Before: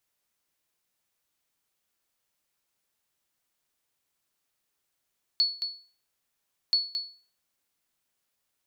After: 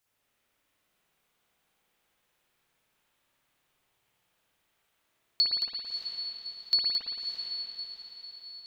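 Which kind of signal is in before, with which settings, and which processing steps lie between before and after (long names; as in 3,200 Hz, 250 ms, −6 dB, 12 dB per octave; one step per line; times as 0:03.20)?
ping with an echo 4,410 Hz, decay 0.40 s, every 1.33 s, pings 2, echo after 0.22 s, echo −8 dB −16.5 dBFS
on a send: feedback delay with all-pass diffusion 610 ms, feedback 44%, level −7 dB
on the sum: spring reverb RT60 2.3 s, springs 56 ms, chirp 70 ms, DRR −8.5 dB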